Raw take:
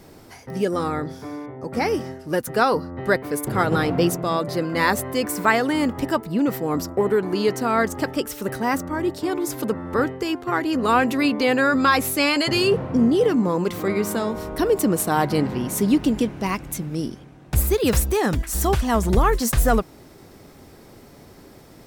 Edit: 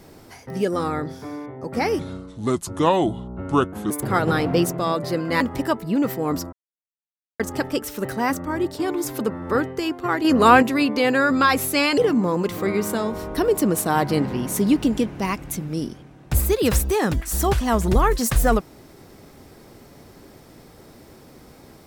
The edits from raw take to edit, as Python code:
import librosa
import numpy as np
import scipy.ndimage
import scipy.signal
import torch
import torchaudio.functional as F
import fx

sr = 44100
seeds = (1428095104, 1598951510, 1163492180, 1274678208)

y = fx.edit(x, sr, fx.speed_span(start_s=1.99, length_s=1.36, speed=0.71),
    fx.cut(start_s=4.85, length_s=0.99),
    fx.silence(start_s=6.96, length_s=0.87),
    fx.clip_gain(start_s=10.68, length_s=0.38, db=5.5),
    fx.cut(start_s=12.41, length_s=0.78), tone=tone)